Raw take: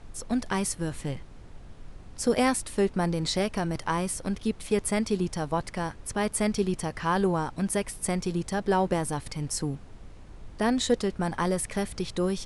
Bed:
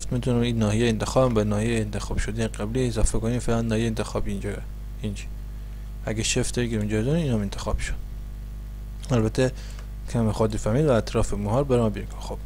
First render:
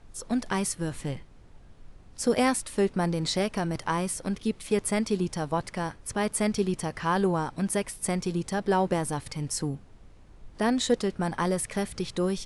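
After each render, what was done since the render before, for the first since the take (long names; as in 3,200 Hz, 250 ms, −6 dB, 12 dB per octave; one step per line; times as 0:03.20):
noise reduction from a noise print 6 dB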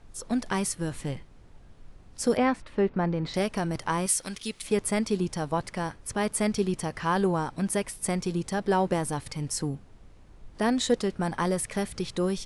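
0:02.37–0:03.34: low-pass filter 2,400 Hz
0:04.06–0:04.62: tilt shelving filter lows −8.5 dB, about 1,300 Hz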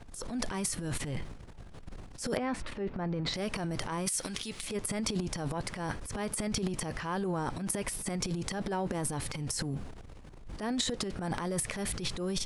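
downward compressor 3 to 1, threshold −32 dBFS, peak gain reduction 11 dB
transient designer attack −9 dB, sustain +12 dB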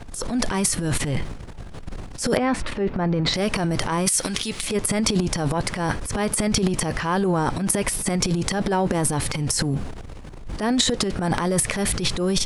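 level +11.5 dB
brickwall limiter −3 dBFS, peak gain reduction 1.5 dB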